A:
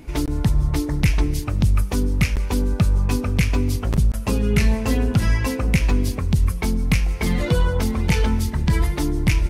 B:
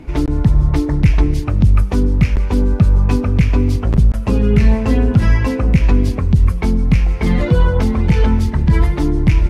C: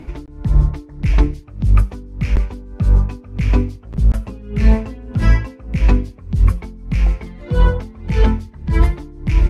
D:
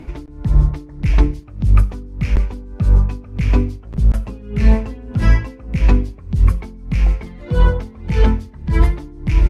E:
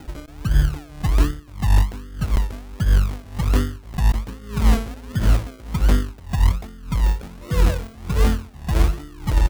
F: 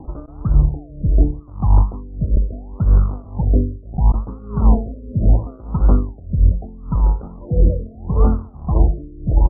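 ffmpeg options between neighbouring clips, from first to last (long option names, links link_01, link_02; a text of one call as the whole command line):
ffmpeg -i in.wav -filter_complex "[0:a]aemphasis=mode=reproduction:type=75kf,acrossover=split=380[link_01][link_02];[link_02]alimiter=limit=-22dB:level=0:latency=1:release=79[link_03];[link_01][link_03]amix=inputs=2:normalize=0,volume=6.5dB" out.wav
ffmpeg -i in.wav -af "aeval=exprs='val(0)*pow(10,-23*(0.5-0.5*cos(2*PI*1.7*n/s))/20)':channel_layout=same,volume=1dB" out.wav
ffmpeg -i in.wav -filter_complex "[0:a]asplit=2[link_01][link_02];[link_02]adelay=61,lowpass=frequency=2000:poles=1,volume=-22dB,asplit=2[link_03][link_04];[link_04]adelay=61,lowpass=frequency=2000:poles=1,volume=0.53,asplit=2[link_05][link_06];[link_06]adelay=61,lowpass=frequency=2000:poles=1,volume=0.53,asplit=2[link_07][link_08];[link_08]adelay=61,lowpass=frequency=2000:poles=1,volume=0.53[link_09];[link_01][link_03][link_05][link_07][link_09]amix=inputs=5:normalize=0" out.wav
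ffmpeg -i in.wav -af "acrusher=samples=38:mix=1:aa=0.000001:lfo=1:lforange=22.8:lforate=1.3,volume=-4dB" out.wav
ffmpeg -i in.wav -af "asuperstop=centerf=2000:order=8:qfactor=1.1,afftfilt=real='re*lt(b*sr/1024,610*pow(1900/610,0.5+0.5*sin(2*PI*0.74*pts/sr)))':imag='im*lt(b*sr/1024,610*pow(1900/610,0.5+0.5*sin(2*PI*0.74*pts/sr)))':win_size=1024:overlap=0.75,volume=3.5dB" out.wav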